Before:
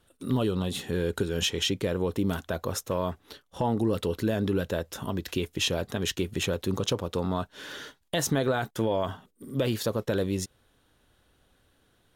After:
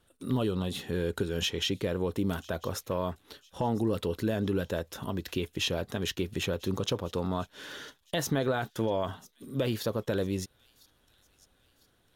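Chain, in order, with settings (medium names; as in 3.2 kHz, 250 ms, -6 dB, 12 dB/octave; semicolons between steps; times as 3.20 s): dynamic bell 8.1 kHz, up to -6 dB, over -49 dBFS, Q 1.7; feedback echo behind a high-pass 1001 ms, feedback 45%, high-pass 4 kHz, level -19 dB; trim -2.5 dB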